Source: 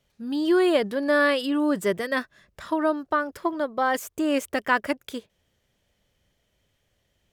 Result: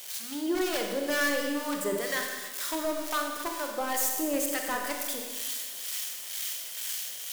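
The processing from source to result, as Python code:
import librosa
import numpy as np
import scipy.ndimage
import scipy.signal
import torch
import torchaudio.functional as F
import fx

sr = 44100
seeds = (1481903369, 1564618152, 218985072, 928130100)

p1 = x + 0.5 * 10.0 ** (-20.0 / 20.0) * np.diff(np.sign(x), prepend=np.sign(x[:1]))
p2 = fx.highpass(p1, sr, hz=280.0, slope=6)
p3 = fx.high_shelf(p2, sr, hz=11000.0, db=-3.5)
p4 = fx.hum_notches(p3, sr, base_hz=50, count=8)
p5 = (np.mod(10.0 ** (16.0 / 20.0) * p4 + 1.0, 2.0) - 1.0) / 10.0 ** (16.0 / 20.0)
p6 = p4 + (p5 * 10.0 ** (-3.5 / 20.0))
p7 = fx.harmonic_tremolo(p6, sr, hz=2.1, depth_pct=70, crossover_hz=850.0)
p8 = fx.rev_schroeder(p7, sr, rt60_s=1.5, comb_ms=31, drr_db=2.0)
y = p8 * 10.0 ** (-7.5 / 20.0)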